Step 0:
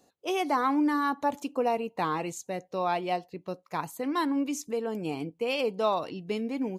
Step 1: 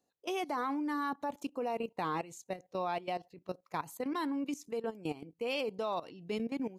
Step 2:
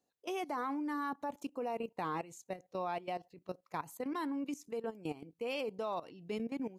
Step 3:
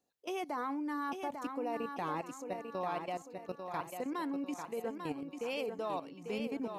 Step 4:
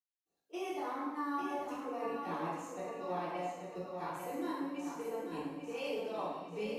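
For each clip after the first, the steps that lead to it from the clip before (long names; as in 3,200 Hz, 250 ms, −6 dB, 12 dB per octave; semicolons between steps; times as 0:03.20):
output level in coarse steps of 16 dB; level −2 dB
dynamic equaliser 3,900 Hz, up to −4 dB, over −57 dBFS, Q 1.6; level −2.5 dB
feedback echo with a high-pass in the loop 845 ms, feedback 42%, high-pass 160 Hz, level −6 dB
convolution reverb RT60 1.1 s, pre-delay 254 ms; level −2 dB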